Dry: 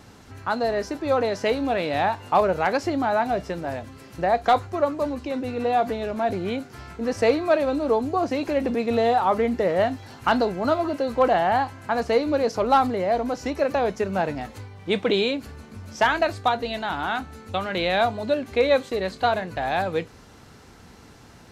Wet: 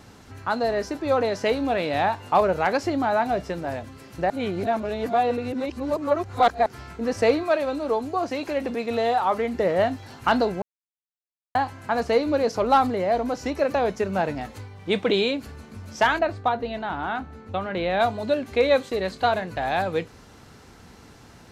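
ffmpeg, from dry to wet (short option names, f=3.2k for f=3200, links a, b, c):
-filter_complex "[0:a]asettb=1/sr,asplit=3[a][b][c];[a]atrim=end=7.434[d];[b]atrim=start=7.43:end=9.55,asetpts=PTS-STARTPTS,afade=t=in:d=0.004:c=qsin,afade=t=out:st=2.116:d=0.004:c=qsin,lowshelf=f=440:g=-6.5[e];[c]atrim=start=9.546[f];[d][e]acrossfade=d=0.004:c1=hsin:c2=qsin[g];[g][f]acrossfade=d=0.004:c1=qsin:c2=hsin,asplit=3[h][i][j];[h]afade=t=out:st=16.18:d=0.02[k];[i]lowpass=f=1.5k:p=1,afade=t=in:st=16.18:d=0.02,afade=t=out:st=17.99:d=0.02[l];[j]afade=t=in:st=17.99:d=0.02[m];[k][l][m]amix=inputs=3:normalize=0,asplit=5[n][o][p][q][r];[n]atrim=end=4.302[s];[o]atrim=start=4.298:end=6.662,asetpts=PTS-STARTPTS,areverse[t];[p]atrim=start=6.658:end=10.62,asetpts=PTS-STARTPTS,afade=t=out:st=3.958:d=0.004:c=hsin[u];[q]atrim=start=10.62:end=11.55,asetpts=PTS-STARTPTS,volume=0[v];[r]atrim=start=11.55,asetpts=PTS-STARTPTS,afade=t=in:d=0.004:c=hsin[w];[s][t]acrossfade=d=0.004:c1=hsin:c2=hsin[x];[u][v][w]concat=n=3:v=0:a=1[y];[x][y]acrossfade=d=0.004:c1=hsin:c2=hsin"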